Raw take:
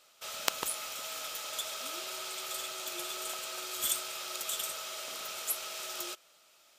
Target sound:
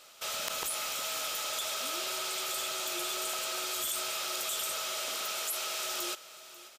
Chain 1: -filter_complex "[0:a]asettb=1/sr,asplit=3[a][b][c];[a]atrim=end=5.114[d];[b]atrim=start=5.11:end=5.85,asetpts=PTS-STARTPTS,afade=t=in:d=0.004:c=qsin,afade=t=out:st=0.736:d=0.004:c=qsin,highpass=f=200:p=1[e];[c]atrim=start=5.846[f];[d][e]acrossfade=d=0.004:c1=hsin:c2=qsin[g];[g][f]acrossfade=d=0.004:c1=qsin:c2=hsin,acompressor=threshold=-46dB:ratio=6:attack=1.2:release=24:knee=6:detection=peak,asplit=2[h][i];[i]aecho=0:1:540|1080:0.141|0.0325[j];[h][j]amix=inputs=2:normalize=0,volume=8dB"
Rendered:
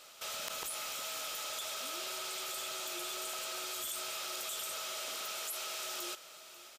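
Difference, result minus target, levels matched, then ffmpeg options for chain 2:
compressor: peak gain reduction +6 dB
-filter_complex "[0:a]asettb=1/sr,asplit=3[a][b][c];[a]atrim=end=5.114[d];[b]atrim=start=5.11:end=5.85,asetpts=PTS-STARTPTS,afade=t=in:d=0.004:c=qsin,afade=t=out:st=0.736:d=0.004:c=qsin,highpass=f=200:p=1[e];[c]atrim=start=5.846[f];[d][e]acrossfade=d=0.004:c1=hsin:c2=qsin[g];[g][f]acrossfade=d=0.004:c1=qsin:c2=hsin,acompressor=threshold=-39dB:ratio=6:attack=1.2:release=24:knee=6:detection=peak,asplit=2[h][i];[i]aecho=0:1:540|1080:0.141|0.0325[j];[h][j]amix=inputs=2:normalize=0,volume=8dB"

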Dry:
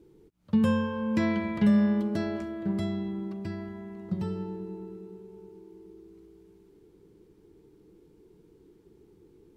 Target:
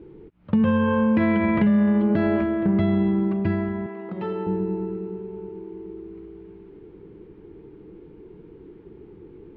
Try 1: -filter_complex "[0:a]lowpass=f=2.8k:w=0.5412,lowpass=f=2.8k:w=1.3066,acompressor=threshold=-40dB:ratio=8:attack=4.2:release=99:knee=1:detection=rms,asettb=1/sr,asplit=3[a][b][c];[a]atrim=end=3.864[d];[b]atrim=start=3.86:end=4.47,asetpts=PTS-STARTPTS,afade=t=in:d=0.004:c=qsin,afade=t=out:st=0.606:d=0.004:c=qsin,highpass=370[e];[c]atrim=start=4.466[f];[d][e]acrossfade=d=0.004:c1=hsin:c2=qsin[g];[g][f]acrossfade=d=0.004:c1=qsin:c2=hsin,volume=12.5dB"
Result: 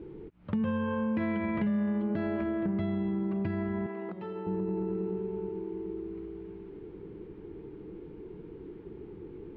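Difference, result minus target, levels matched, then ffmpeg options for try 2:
compressor: peak gain reduction +10.5 dB
-filter_complex "[0:a]lowpass=f=2.8k:w=0.5412,lowpass=f=2.8k:w=1.3066,acompressor=threshold=-28dB:ratio=8:attack=4.2:release=99:knee=1:detection=rms,asettb=1/sr,asplit=3[a][b][c];[a]atrim=end=3.864[d];[b]atrim=start=3.86:end=4.47,asetpts=PTS-STARTPTS,afade=t=in:d=0.004:c=qsin,afade=t=out:st=0.606:d=0.004:c=qsin,highpass=370[e];[c]atrim=start=4.466[f];[d][e]acrossfade=d=0.004:c1=hsin:c2=qsin[g];[g][f]acrossfade=d=0.004:c1=qsin:c2=hsin,volume=12.5dB"

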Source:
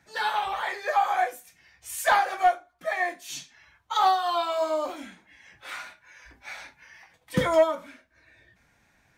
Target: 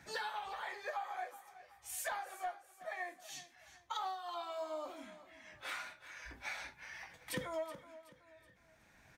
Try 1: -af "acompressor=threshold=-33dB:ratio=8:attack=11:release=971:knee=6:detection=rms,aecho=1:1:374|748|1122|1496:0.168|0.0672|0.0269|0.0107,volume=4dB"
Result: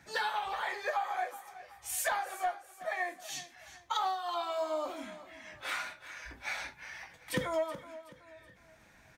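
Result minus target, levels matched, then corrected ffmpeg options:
compressor: peak gain reduction -8 dB
-af "acompressor=threshold=-42dB:ratio=8:attack=11:release=971:knee=6:detection=rms,aecho=1:1:374|748|1122|1496:0.168|0.0672|0.0269|0.0107,volume=4dB"

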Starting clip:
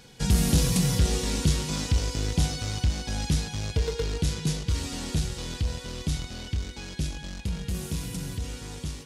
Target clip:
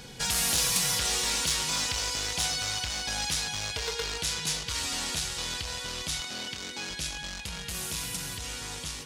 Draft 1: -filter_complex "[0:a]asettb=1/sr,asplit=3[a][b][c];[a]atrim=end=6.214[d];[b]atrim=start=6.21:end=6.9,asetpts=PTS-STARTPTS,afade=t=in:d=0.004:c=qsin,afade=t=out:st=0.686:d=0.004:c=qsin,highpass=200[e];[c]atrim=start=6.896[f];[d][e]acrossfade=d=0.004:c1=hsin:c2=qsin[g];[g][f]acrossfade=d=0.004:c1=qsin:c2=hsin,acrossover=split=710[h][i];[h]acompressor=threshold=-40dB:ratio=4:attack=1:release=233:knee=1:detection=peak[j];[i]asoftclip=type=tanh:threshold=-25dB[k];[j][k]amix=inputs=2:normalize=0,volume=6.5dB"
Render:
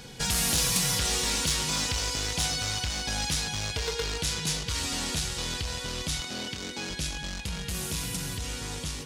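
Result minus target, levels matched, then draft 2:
compressor: peak gain reduction -7 dB
-filter_complex "[0:a]asettb=1/sr,asplit=3[a][b][c];[a]atrim=end=6.214[d];[b]atrim=start=6.21:end=6.9,asetpts=PTS-STARTPTS,afade=t=in:d=0.004:c=qsin,afade=t=out:st=0.686:d=0.004:c=qsin,highpass=200[e];[c]atrim=start=6.896[f];[d][e]acrossfade=d=0.004:c1=hsin:c2=qsin[g];[g][f]acrossfade=d=0.004:c1=qsin:c2=hsin,acrossover=split=710[h][i];[h]acompressor=threshold=-49dB:ratio=4:attack=1:release=233:knee=1:detection=peak[j];[i]asoftclip=type=tanh:threshold=-25dB[k];[j][k]amix=inputs=2:normalize=0,volume=6.5dB"

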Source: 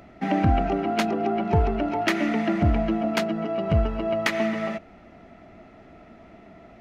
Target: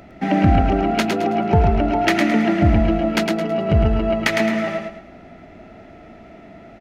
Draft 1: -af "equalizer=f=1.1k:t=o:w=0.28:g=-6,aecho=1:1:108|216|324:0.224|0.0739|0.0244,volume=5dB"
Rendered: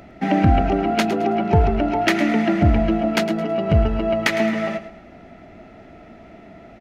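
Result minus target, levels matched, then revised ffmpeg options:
echo-to-direct -8.5 dB
-af "equalizer=f=1.1k:t=o:w=0.28:g=-6,aecho=1:1:108|216|324|432:0.596|0.197|0.0649|0.0214,volume=5dB"

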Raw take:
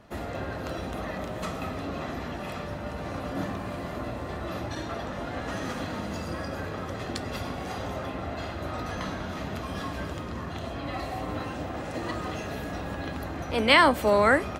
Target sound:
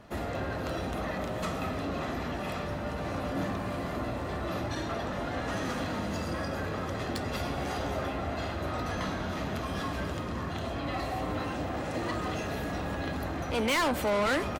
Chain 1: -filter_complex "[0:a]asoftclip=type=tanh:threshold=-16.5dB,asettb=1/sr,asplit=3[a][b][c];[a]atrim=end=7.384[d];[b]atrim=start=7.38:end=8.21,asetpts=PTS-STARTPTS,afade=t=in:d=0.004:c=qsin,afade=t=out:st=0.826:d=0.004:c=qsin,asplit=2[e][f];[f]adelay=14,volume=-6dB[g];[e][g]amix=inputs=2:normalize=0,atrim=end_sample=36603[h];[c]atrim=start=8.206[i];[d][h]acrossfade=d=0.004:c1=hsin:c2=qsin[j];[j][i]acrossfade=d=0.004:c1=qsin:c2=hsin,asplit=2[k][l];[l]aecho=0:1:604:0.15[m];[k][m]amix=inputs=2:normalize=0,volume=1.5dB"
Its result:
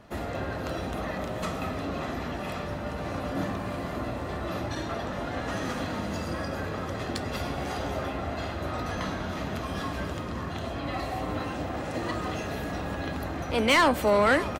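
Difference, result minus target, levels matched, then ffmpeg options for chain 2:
soft clip: distortion -7 dB
-filter_complex "[0:a]asoftclip=type=tanh:threshold=-26dB,asettb=1/sr,asplit=3[a][b][c];[a]atrim=end=7.384[d];[b]atrim=start=7.38:end=8.21,asetpts=PTS-STARTPTS,afade=t=in:d=0.004:c=qsin,afade=t=out:st=0.826:d=0.004:c=qsin,asplit=2[e][f];[f]adelay=14,volume=-6dB[g];[e][g]amix=inputs=2:normalize=0,atrim=end_sample=36603[h];[c]atrim=start=8.206[i];[d][h]acrossfade=d=0.004:c1=hsin:c2=qsin[j];[j][i]acrossfade=d=0.004:c1=qsin:c2=hsin,asplit=2[k][l];[l]aecho=0:1:604:0.15[m];[k][m]amix=inputs=2:normalize=0,volume=1.5dB"

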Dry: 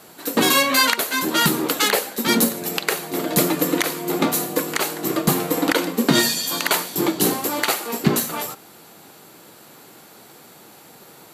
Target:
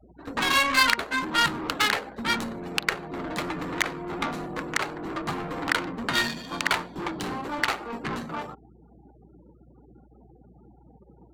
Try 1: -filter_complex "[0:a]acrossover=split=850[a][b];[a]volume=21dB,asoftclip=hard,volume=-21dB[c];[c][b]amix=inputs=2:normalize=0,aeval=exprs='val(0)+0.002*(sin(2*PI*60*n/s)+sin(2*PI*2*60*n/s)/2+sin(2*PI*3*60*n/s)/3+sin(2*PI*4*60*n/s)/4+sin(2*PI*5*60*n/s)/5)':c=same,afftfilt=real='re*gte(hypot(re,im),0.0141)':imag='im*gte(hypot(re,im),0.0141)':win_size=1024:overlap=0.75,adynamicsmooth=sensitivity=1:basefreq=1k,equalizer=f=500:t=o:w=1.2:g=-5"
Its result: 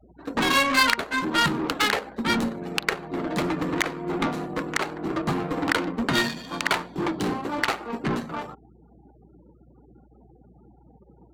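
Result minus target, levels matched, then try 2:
overloaded stage: distortion -5 dB
-filter_complex "[0:a]acrossover=split=850[a][b];[a]volume=30dB,asoftclip=hard,volume=-30dB[c];[c][b]amix=inputs=2:normalize=0,aeval=exprs='val(0)+0.002*(sin(2*PI*60*n/s)+sin(2*PI*2*60*n/s)/2+sin(2*PI*3*60*n/s)/3+sin(2*PI*4*60*n/s)/4+sin(2*PI*5*60*n/s)/5)':c=same,afftfilt=real='re*gte(hypot(re,im),0.0141)':imag='im*gte(hypot(re,im),0.0141)':win_size=1024:overlap=0.75,adynamicsmooth=sensitivity=1:basefreq=1k,equalizer=f=500:t=o:w=1.2:g=-5"

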